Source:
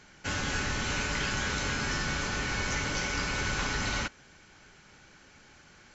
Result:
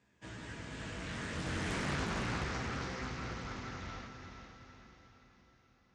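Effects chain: Doppler pass-by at 1.9, 39 m/s, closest 3.3 m; HPF 79 Hz 12 dB/oct; tilt -2 dB/oct; notches 50/100/150 Hz; in parallel at -0.5 dB: compressor, threshold -51 dBFS, peak gain reduction 20.5 dB; on the sum: limiter -32.5 dBFS, peak gain reduction 12 dB; chorus 0.36 Hz, delay 15 ms, depth 7.3 ms; on a send: diffused feedback echo 0.452 s, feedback 49%, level -6.5 dB; on the sum: Doppler distortion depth 0.62 ms; gain +8 dB

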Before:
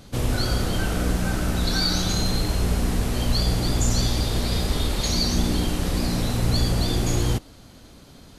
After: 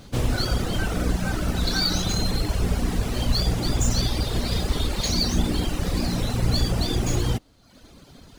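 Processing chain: median filter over 3 samples; reverb removal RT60 0.86 s; gain +1.5 dB

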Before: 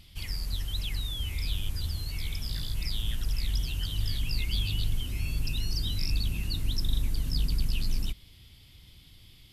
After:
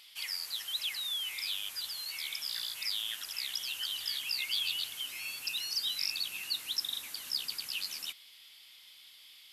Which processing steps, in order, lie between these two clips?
HPF 1100 Hz 12 dB/oct; gain +3.5 dB

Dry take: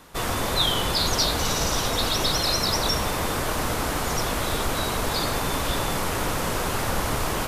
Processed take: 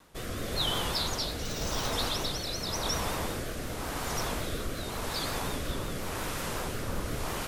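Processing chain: 1.43–1.93 careless resampling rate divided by 2×, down filtered, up hold; vibrato 5.5 Hz 78 cents; rotary speaker horn 0.9 Hz; gain -6 dB

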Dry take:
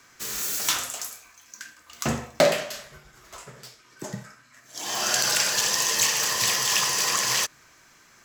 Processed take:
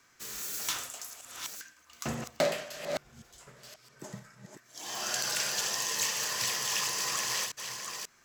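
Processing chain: reverse delay 0.537 s, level -6.5 dB; spectral repair 3.07–3.38, 250–2900 Hz before; gain -9 dB

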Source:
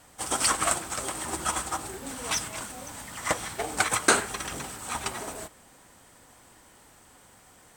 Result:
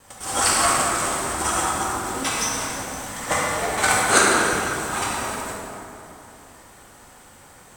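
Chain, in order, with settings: local time reversal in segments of 0.102 s; plate-style reverb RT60 2.8 s, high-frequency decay 0.55×, DRR -6.5 dB; gain +1 dB

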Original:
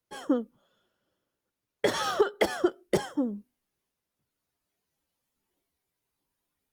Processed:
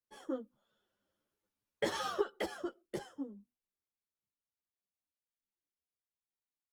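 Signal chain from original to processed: Doppler pass-by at 1.35, 8 m/s, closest 4.2 m; ensemble effect; gain -1.5 dB

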